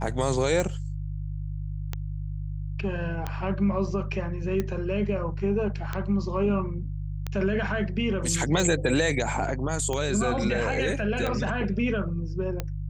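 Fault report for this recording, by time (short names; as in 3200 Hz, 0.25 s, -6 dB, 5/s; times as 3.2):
hum 50 Hz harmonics 3 -32 dBFS
tick 45 rpm -15 dBFS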